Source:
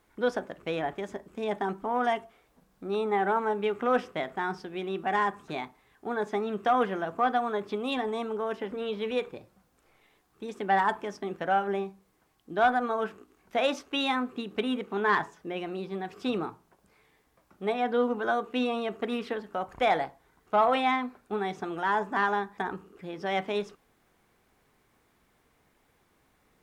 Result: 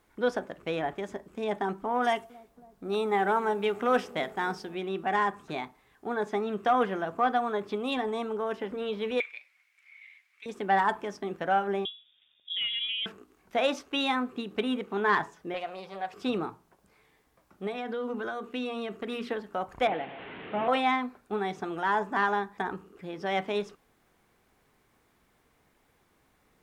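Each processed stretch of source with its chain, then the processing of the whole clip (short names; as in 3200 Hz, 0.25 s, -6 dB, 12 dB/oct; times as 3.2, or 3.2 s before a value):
2.02–4.75 high shelf 3900 Hz +9 dB + dark delay 0.277 s, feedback 66%, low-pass 530 Hz, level -18 dB + mismatched tape noise reduction decoder only
9.2–10.46 resonant high-pass 2200 Hz, resonance Q 11 + high shelf 8100 Hz -10 dB
11.85–13.06 tilt shelf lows +7 dB, about 680 Hz + compressor 4:1, threshold -29 dBFS + inverted band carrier 3600 Hz
15.54–16.14 resonant low shelf 450 Hz -9 dB, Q 3 + upward compressor, threshold -41 dBFS + Doppler distortion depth 0.21 ms
17.67–19.29 notches 60/120/180/240/300/360 Hz + compressor, threshold -28 dBFS + bell 770 Hz -5 dB 0.97 oct
19.87–20.68 delta modulation 16 kbps, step -32 dBFS + HPF 190 Hz + bell 1100 Hz -7.5 dB 1.8 oct
whole clip: dry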